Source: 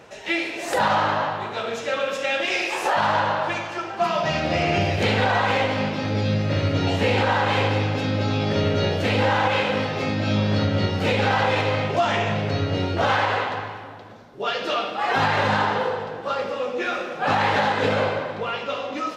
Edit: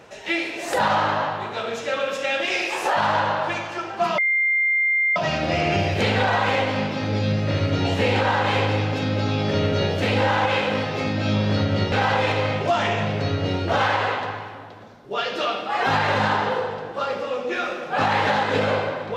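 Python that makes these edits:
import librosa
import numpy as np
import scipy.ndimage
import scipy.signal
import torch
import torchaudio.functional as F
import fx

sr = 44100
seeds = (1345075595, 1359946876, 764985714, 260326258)

y = fx.edit(x, sr, fx.insert_tone(at_s=4.18, length_s=0.98, hz=2100.0, db=-17.0),
    fx.cut(start_s=10.94, length_s=0.27), tone=tone)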